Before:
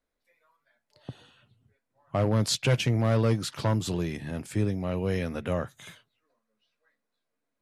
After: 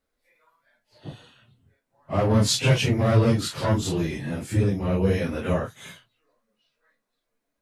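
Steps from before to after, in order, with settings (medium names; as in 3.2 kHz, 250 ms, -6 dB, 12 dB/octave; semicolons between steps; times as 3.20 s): phase randomisation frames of 100 ms; trim +4.5 dB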